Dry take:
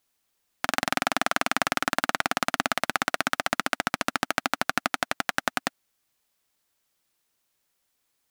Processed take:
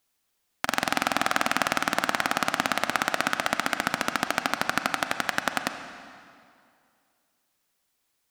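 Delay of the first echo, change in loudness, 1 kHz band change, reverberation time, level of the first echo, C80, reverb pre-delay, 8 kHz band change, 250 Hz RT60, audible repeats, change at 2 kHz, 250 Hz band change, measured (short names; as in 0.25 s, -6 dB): none, +0.5 dB, +0.5 dB, 2.3 s, none, 9.0 dB, 32 ms, +0.5 dB, 2.3 s, none, +0.5 dB, +0.5 dB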